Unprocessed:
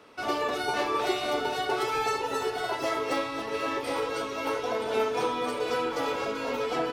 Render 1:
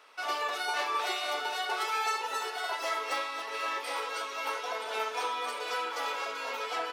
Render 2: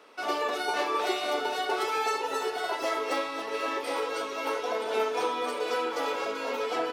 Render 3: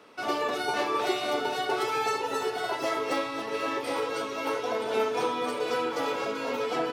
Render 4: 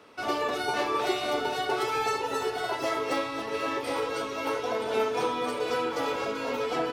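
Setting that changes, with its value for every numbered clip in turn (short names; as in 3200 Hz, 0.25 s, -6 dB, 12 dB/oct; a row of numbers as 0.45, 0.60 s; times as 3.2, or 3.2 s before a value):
HPF, cutoff: 860, 340, 130, 48 Hz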